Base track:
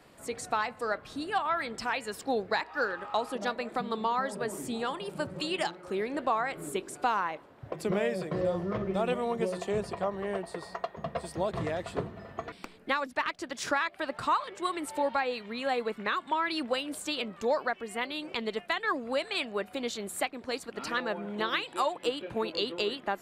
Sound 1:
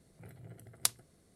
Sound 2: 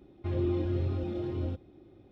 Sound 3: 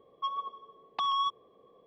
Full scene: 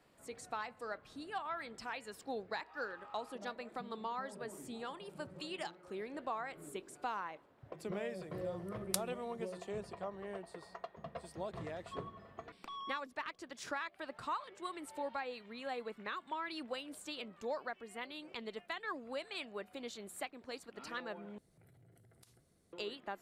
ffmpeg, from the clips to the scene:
ffmpeg -i bed.wav -i cue0.wav -i cue1.wav -i cue2.wav -filter_complex "[1:a]asplit=2[link_01][link_02];[0:a]volume=-11.5dB[link_03];[link_02]acompressor=threshold=-56dB:ratio=4:attack=2.5:release=23:knee=1:detection=rms[link_04];[link_03]asplit=2[link_05][link_06];[link_05]atrim=end=21.384[link_07];[link_04]atrim=end=1.35,asetpts=PTS-STARTPTS,volume=-7dB[link_08];[link_06]atrim=start=22.726[link_09];[link_01]atrim=end=1.35,asetpts=PTS-STARTPTS,volume=-6.5dB,afade=type=in:duration=0.004:curve=hsin,afade=type=out:start_time=1.346:duration=0.004:curve=hsin,adelay=8090[link_10];[3:a]atrim=end=1.86,asetpts=PTS-STARTPTS,volume=-16.5dB,afade=type=in:duration=0.004:curve=hsin,afade=type=out:start_time=1.856:duration=0.004:curve=hsin,adelay=11690[link_11];[link_07][link_08]acrossfade=duration=0.004:curve1=hsin:curve2=hsin[link_12];[link_12][link_09]acrossfade=duration=0.004:curve1=hsin:curve2=hsin[link_13];[link_13][link_10][link_11]amix=inputs=3:normalize=0" out.wav

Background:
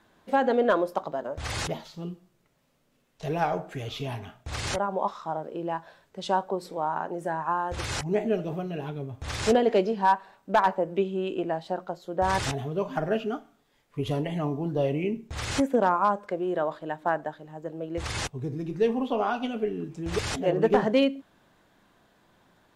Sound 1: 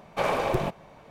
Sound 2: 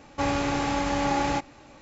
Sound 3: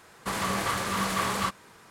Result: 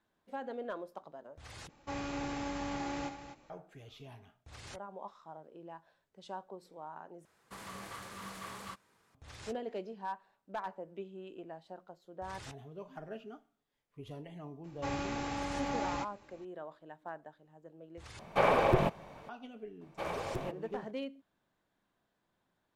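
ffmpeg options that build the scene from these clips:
ffmpeg -i bed.wav -i cue0.wav -i cue1.wav -i cue2.wav -filter_complex "[2:a]asplit=2[link_01][link_02];[1:a]asplit=2[link_03][link_04];[0:a]volume=-18dB[link_05];[link_01]aecho=1:1:64.14|250.7:0.316|0.316[link_06];[link_03]acrossover=split=3300[link_07][link_08];[link_08]acompressor=threshold=-50dB:ratio=4:attack=1:release=60[link_09];[link_07][link_09]amix=inputs=2:normalize=0[link_10];[link_05]asplit=4[link_11][link_12][link_13][link_14];[link_11]atrim=end=1.694[link_15];[link_06]atrim=end=1.81,asetpts=PTS-STARTPTS,volume=-13.5dB[link_16];[link_12]atrim=start=3.496:end=7.254[link_17];[3:a]atrim=end=1.9,asetpts=PTS-STARTPTS,volume=-17.5dB[link_18];[link_13]atrim=start=9.146:end=18.194[link_19];[link_10]atrim=end=1.1,asetpts=PTS-STARTPTS,volume=-0.5dB[link_20];[link_14]atrim=start=19.286[link_21];[link_02]atrim=end=1.81,asetpts=PTS-STARTPTS,volume=-11dB,afade=type=in:duration=0.004:curve=hsin,afade=type=out:start_time=1.806:duration=0.004:curve=hsin,adelay=14640[link_22];[link_04]atrim=end=1.1,asetpts=PTS-STARTPTS,volume=-12.5dB,afade=type=in:duration=0.004:curve=hsin,afade=type=out:start_time=1.096:duration=0.004:curve=hsin,adelay=19810[link_23];[link_15][link_16]acrossfade=duration=0.004:curve1=hsin:curve2=hsin[link_24];[link_24][link_17]acrossfade=duration=0.004:curve1=hsin:curve2=hsin[link_25];[link_25][link_18]acrossfade=duration=0.004:curve1=hsin:curve2=hsin[link_26];[link_26][link_19]acrossfade=duration=0.004:curve1=hsin:curve2=hsin[link_27];[link_27][link_20]acrossfade=duration=0.004:curve1=hsin:curve2=hsin[link_28];[link_28][link_21]acrossfade=duration=0.004:curve1=hsin:curve2=hsin[link_29];[link_29][link_22][link_23]amix=inputs=3:normalize=0" out.wav

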